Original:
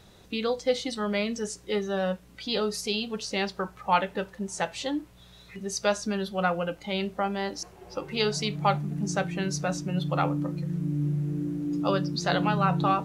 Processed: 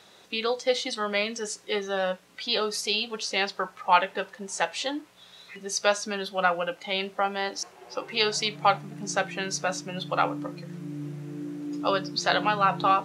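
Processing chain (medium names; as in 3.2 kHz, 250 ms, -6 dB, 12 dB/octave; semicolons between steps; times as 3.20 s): frequency weighting A; trim +3.5 dB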